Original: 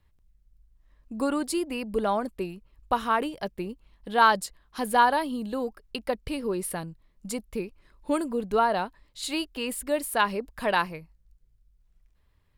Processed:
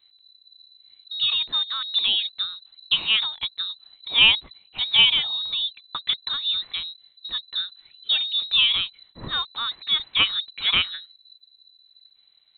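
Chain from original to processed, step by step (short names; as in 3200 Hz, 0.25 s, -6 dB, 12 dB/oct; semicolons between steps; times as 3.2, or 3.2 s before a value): inverted band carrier 4000 Hz; gain +3.5 dB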